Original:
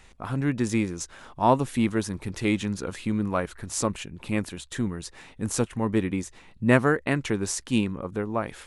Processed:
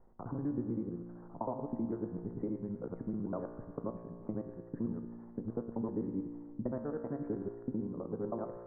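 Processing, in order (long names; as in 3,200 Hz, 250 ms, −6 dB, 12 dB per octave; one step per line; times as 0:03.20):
reversed piece by piece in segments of 64 ms
downward compressor 12 to 1, threshold −25 dBFS, peak gain reduction 13.5 dB
Gaussian smoothing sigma 9.5 samples
parametric band 61 Hz −12.5 dB 1.9 octaves
tuned comb filter 58 Hz, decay 1.9 s, harmonics all, mix 80%
level +8 dB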